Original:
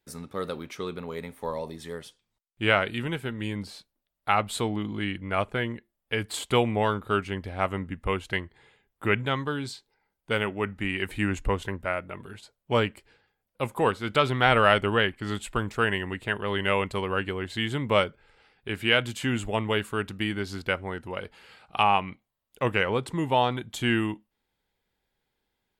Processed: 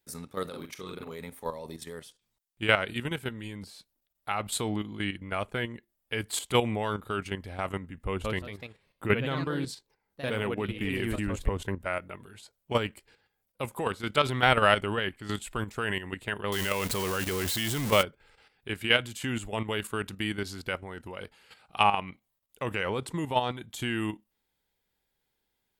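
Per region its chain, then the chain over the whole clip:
0:00.49–0:01.12: amplitude modulation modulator 37 Hz, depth 40% + double-tracking delay 43 ms −3.5 dB
0:08.03–0:11.82: delay with pitch and tempo change per echo 179 ms, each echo +2 semitones, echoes 2, each echo −6 dB + tilt shelving filter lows +3.5 dB, about 880 Hz
0:16.52–0:18.03: converter with a step at zero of −29 dBFS + high-shelf EQ 4,300 Hz +5.5 dB
whole clip: high-shelf EQ 5,600 Hz +9 dB; output level in coarse steps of 10 dB

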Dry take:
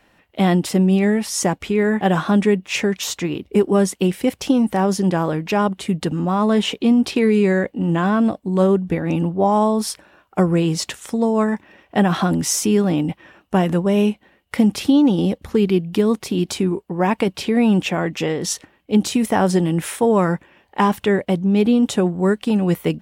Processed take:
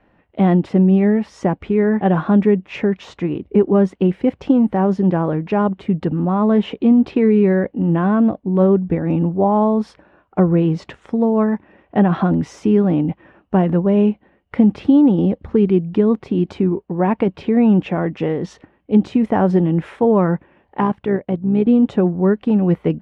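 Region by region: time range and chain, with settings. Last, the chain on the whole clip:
0:20.80–0:21.67: transient designer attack −4 dB, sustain −8 dB + amplitude modulation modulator 61 Hz, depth 25%
whole clip: low-pass filter 2,300 Hz 12 dB per octave; tilt shelving filter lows +4 dB; level −1 dB

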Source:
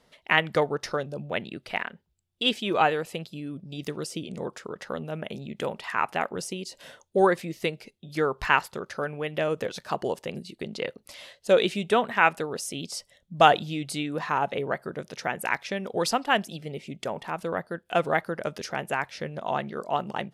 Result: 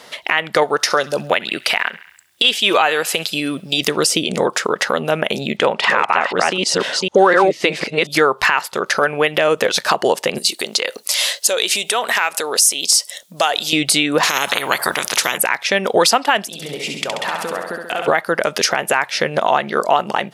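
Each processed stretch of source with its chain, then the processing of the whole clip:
0:00.63–0:03.81: spectral tilt +1.5 dB per octave + delay with a high-pass on its return 67 ms, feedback 47%, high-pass 1,400 Hz, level −21 dB
0:05.57–0:08.07: delay that plays each chunk backwards 252 ms, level −1.5 dB + high-frequency loss of the air 76 metres
0:10.38–0:13.73: downward compressor 3 to 1, threshold −38 dBFS + bass and treble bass −14 dB, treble +12 dB
0:14.23–0:15.38: parametric band 3,900 Hz −6 dB 2.4 octaves + every bin compressed towards the loudest bin 4 to 1
0:16.46–0:18.08: downward compressor 10 to 1, threshold −42 dBFS + flutter between parallel walls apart 11.5 metres, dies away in 0.91 s
whole clip: high-pass filter 770 Hz 6 dB per octave; downward compressor 2.5 to 1, threshold −39 dBFS; boost into a limiter +26.5 dB; level −1 dB

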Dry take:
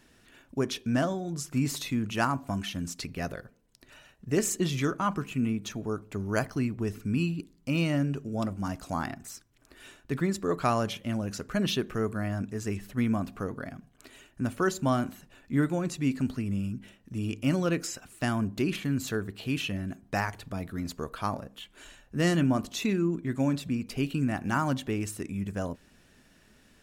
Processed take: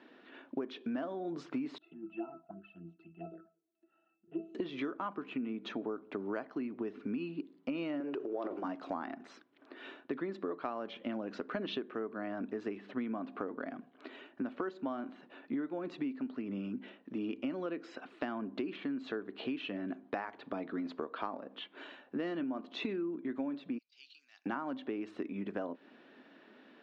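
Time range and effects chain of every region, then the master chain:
0:01.78–0:04.55: resonances in every octave E, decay 0.21 s + flanger swept by the level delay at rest 4 ms, full sweep at −37.5 dBFS
0:08.00–0:08.64: phase distortion by the signal itself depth 0.056 ms + low shelf with overshoot 290 Hz −8.5 dB, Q 3 + transient designer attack +2 dB, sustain +11 dB
0:23.78–0:24.46: flat-topped band-pass 5,400 Hz, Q 2.1 + compressor whose output falls as the input rises −51 dBFS, ratio −0.5
whole clip: Chebyshev band-pass filter 270–3,800 Hz, order 3; high-shelf EQ 2,200 Hz −11.5 dB; downward compressor 12 to 1, threshold −41 dBFS; level +7 dB

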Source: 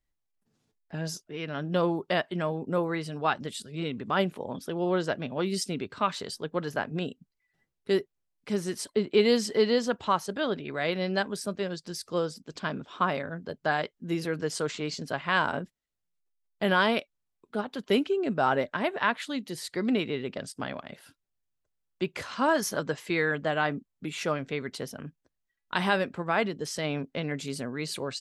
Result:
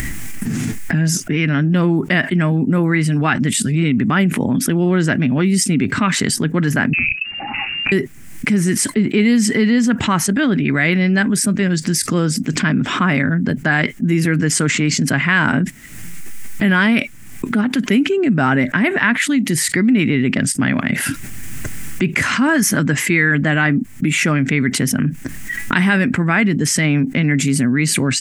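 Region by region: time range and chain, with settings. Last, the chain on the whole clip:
0:06.93–0:07.92: downward compressor 20 to 1, threshold −34 dBFS + hard clipping −32.5 dBFS + voice inversion scrambler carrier 2,800 Hz
whole clip: upward compression, threshold −32 dBFS; octave-band graphic EQ 125/250/500/1,000/2,000/4,000/8,000 Hz +7/+11/−10/−6/+11/−10/+6 dB; envelope flattener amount 70%; level +2 dB

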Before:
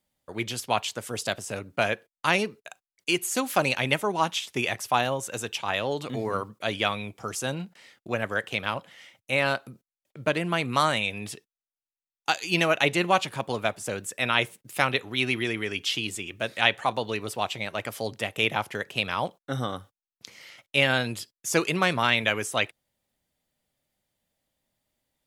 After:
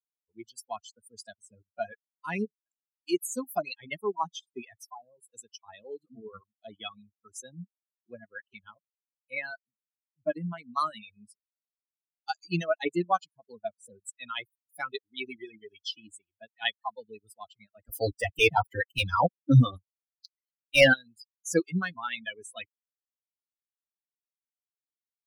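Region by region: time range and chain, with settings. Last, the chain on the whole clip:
0:04.88–0:05.31: flat-topped bell 3,200 Hz −9 dB 2.7 octaves + downward compressor 1.5 to 1, threshold −33 dBFS
0:17.89–0:20.94: leveller curve on the samples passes 3 + notch comb filter 210 Hz
whole clip: spectral dynamics exaggerated over time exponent 3; reverb reduction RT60 0.87 s; low-shelf EQ 440 Hz +7.5 dB

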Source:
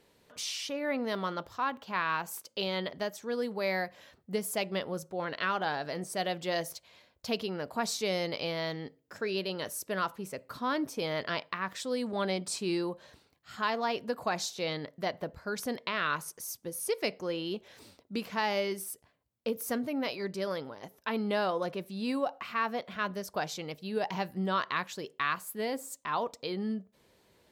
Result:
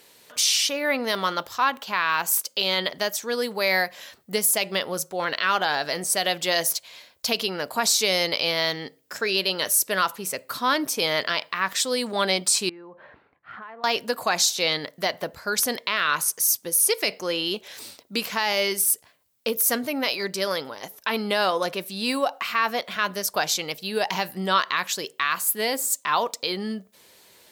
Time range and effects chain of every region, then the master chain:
0:12.69–0:13.84: low-pass filter 1,900 Hz 24 dB per octave + downward compressor 10 to 1, threshold −46 dBFS
whole clip: spectral tilt +3 dB per octave; boost into a limiter +18.5 dB; level −9 dB

